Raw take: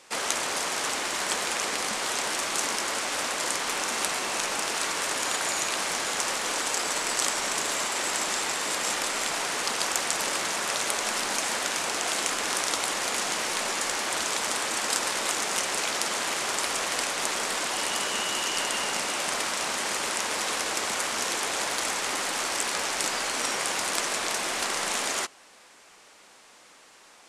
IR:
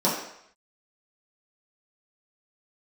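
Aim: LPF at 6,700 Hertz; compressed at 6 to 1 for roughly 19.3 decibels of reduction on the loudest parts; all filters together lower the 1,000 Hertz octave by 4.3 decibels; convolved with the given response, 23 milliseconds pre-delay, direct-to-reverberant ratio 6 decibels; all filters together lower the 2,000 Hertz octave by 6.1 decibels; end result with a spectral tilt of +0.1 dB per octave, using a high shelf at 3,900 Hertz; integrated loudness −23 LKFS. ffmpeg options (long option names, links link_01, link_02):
-filter_complex "[0:a]lowpass=6700,equalizer=frequency=1000:width_type=o:gain=-3.5,equalizer=frequency=2000:width_type=o:gain=-9,highshelf=frequency=3900:gain=8,acompressor=threshold=-44dB:ratio=6,asplit=2[link_01][link_02];[1:a]atrim=start_sample=2205,adelay=23[link_03];[link_02][link_03]afir=irnorm=-1:irlink=0,volume=-21dB[link_04];[link_01][link_04]amix=inputs=2:normalize=0,volume=19.5dB"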